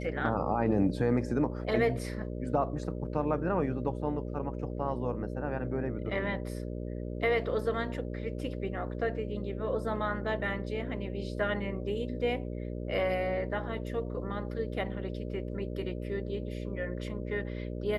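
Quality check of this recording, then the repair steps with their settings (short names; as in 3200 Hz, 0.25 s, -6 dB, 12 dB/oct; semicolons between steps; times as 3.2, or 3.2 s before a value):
buzz 60 Hz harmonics 10 -37 dBFS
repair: de-hum 60 Hz, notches 10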